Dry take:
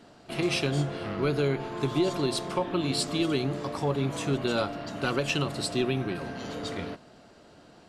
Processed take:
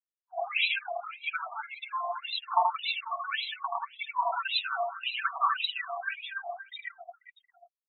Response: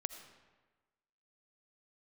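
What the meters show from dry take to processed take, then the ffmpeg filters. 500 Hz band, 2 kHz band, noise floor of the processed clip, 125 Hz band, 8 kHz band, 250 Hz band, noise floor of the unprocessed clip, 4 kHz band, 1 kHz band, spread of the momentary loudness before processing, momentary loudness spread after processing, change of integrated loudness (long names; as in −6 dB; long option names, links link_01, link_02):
−11.0 dB, +3.5 dB, below −85 dBFS, below −40 dB, below −40 dB, below −40 dB, −54 dBFS, +0.5 dB, +6.0 dB, 8 LU, 12 LU, −2.5 dB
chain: -filter_complex "[0:a]highpass=340,afftfilt=real='re*gte(hypot(re,im),0.0355)':imag='im*gte(hypot(re,im),0.0355)':win_size=1024:overlap=0.75,lowpass=frequency=5800:width_type=q:width=4,alimiter=limit=-23.5dB:level=0:latency=1:release=13,aecho=1:1:5.2:0.44,aphaser=in_gain=1:out_gain=1:delay=2.1:decay=0.69:speed=0.77:type=triangular,asplit=2[link_01][link_02];[link_02]aecho=0:1:80|184|319.2|495|723.4:0.631|0.398|0.251|0.158|0.1[link_03];[link_01][link_03]amix=inputs=2:normalize=0,afftfilt=real='re*between(b*sr/1024,870*pow(2900/870,0.5+0.5*sin(2*PI*1.8*pts/sr))/1.41,870*pow(2900/870,0.5+0.5*sin(2*PI*1.8*pts/sr))*1.41)':imag='im*between(b*sr/1024,870*pow(2900/870,0.5+0.5*sin(2*PI*1.8*pts/sr))/1.41,870*pow(2900/870,0.5+0.5*sin(2*PI*1.8*pts/sr))*1.41)':win_size=1024:overlap=0.75,volume=7.5dB"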